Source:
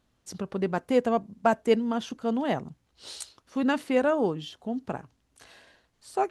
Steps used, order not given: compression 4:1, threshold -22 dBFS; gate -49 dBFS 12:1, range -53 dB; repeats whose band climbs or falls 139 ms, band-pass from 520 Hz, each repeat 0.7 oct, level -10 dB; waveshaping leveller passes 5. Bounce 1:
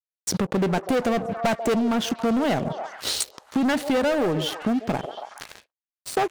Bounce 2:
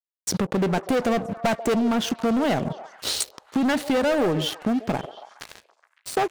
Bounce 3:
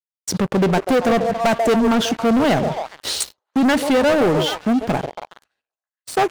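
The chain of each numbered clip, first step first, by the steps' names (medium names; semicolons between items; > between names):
waveshaping leveller > repeats whose band climbs or falls > gate > compression; waveshaping leveller > compression > gate > repeats whose band climbs or falls; gate > repeats whose band climbs or falls > compression > waveshaping leveller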